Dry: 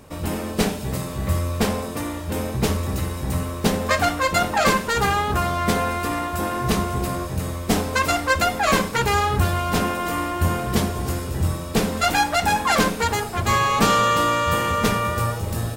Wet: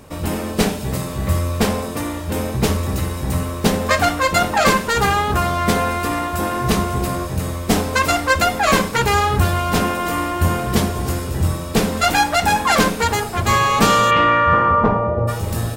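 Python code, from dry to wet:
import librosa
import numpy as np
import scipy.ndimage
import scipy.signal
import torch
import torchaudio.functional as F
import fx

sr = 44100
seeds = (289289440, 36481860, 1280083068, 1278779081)

y = fx.lowpass_res(x, sr, hz=fx.line((14.1, 2700.0), (15.27, 570.0)), q=2.0, at=(14.1, 15.27), fade=0.02)
y = F.gain(torch.from_numpy(y), 3.5).numpy()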